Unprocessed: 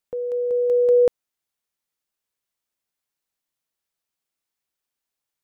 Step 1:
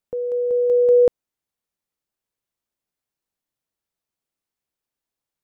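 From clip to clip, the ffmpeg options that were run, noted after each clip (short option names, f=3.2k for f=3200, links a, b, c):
-af "tiltshelf=f=810:g=4"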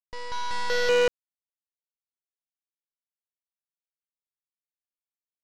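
-af "aresample=11025,acrusher=bits=4:mix=0:aa=0.000001,aresample=44100,aeval=exprs='0.355*(cos(1*acos(clip(val(0)/0.355,-1,1)))-cos(1*PI/2))+0.141*(cos(3*acos(clip(val(0)/0.355,-1,1)))-cos(3*PI/2))+0.0398*(cos(6*acos(clip(val(0)/0.355,-1,1)))-cos(6*PI/2))':c=same,asoftclip=type=tanh:threshold=-17dB"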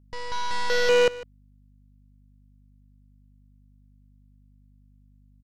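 -af "aeval=exprs='val(0)+0.00141*(sin(2*PI*50*n/s)+sin(2*PI*2*50*n/s)/2+sin(2*PI*3*50*n/s)/3+sin(2*PI*4*50*n/s)/4+sin(2*PI*5*50*n/s)/5)':c=same,aecho=1:1:152:0.119,volume=2dB"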